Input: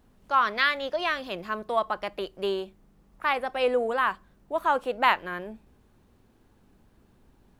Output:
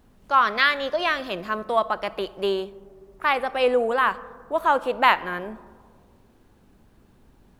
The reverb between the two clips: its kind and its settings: algorithmic reverb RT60 2 s, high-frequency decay 0.25×, pre-delay 15 ms, DRR 18 dB; trim +4 dB

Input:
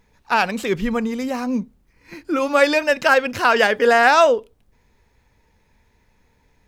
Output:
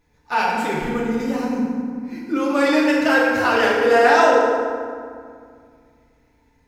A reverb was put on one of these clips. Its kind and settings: FDN reverb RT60 2.1 s, low-frequency decay 1.45×, high-frequency decay 0.55×, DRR -5.5 dB; trim -7.5 dB

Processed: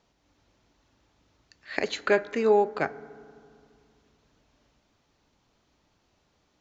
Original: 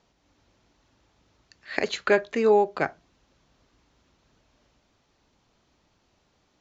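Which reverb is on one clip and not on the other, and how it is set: FDN reverb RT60 2.3 s, low-frequency decay 1.4×, high-frequency decay 0.3×, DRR 17 dB; trim -2 dB

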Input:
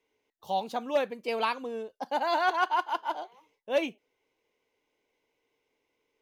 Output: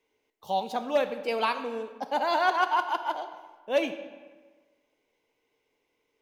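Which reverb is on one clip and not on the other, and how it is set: algorithmic reverb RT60 1.4 s, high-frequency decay 0.7×, pre-delay 5 ms, DRR 9.5 dB; trim +1.5 dB

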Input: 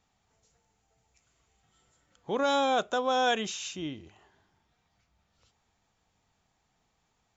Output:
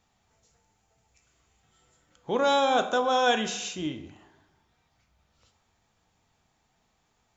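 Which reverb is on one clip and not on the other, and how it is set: plate-style reverb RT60 0.85 s, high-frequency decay 0.6×, DRR 7 dB; trim +2.5 dB

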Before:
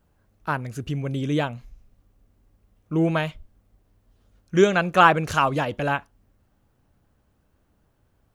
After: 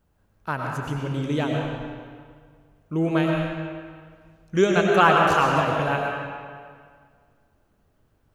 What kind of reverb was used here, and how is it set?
algorithmic reverb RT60 1.9 s, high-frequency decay 0.8×, pre-delay 65 ms, DRR -0.5 dB; trim -2.5 dB

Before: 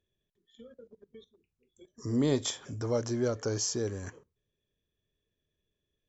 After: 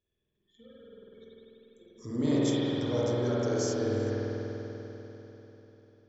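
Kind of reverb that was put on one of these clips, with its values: spring tank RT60 3.9 s, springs 49 ms, chirp 55 ms, DRR -9 dB; trim -6 dB

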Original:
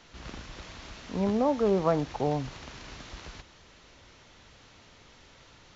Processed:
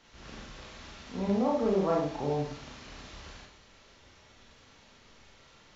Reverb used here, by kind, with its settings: Schroeder reverb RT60 0.5 s, combs from 28 ms, DRR -3 dB; trim -7 dB

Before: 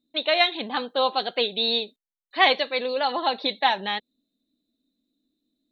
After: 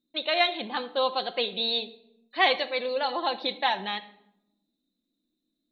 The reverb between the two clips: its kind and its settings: simulated room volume 2600 m³, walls furnished, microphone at 0.89 m; trim -4 dB

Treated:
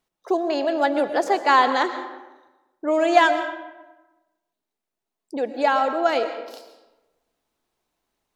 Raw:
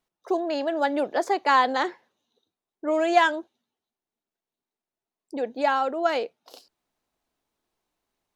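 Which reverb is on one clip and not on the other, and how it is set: algorithmic reverb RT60 1.1 s, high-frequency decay 0.65×, pre-delay 80 ms, DRR 9 dB; trim +3 dB

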